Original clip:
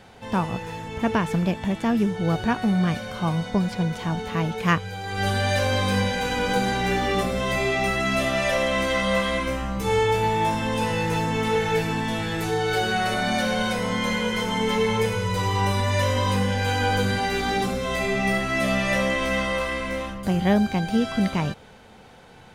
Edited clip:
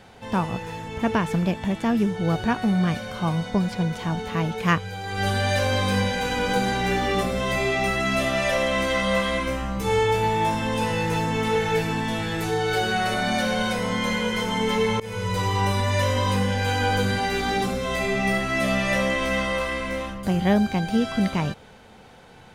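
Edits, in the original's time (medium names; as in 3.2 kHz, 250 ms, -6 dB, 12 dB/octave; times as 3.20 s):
15.00–15.39 s: fade in equal-power, from -24 dB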